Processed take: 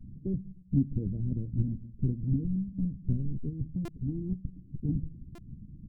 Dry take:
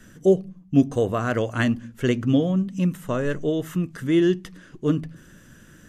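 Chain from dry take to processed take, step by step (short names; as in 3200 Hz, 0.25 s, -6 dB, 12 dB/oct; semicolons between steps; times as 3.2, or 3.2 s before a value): half-waves squared off; inverse Chebyshev low-pass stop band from 930 Hz, stop band 70 dB; in parallel at -1 dB: compressor, threshold -25 dBFS, peak gain reduction 10.5 dB; on the sum: harmonic-percussive split harmonic -14 dB; doubler 15 ms -13 dB; stuck buffer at 3.85/5.35, samples 128, times 10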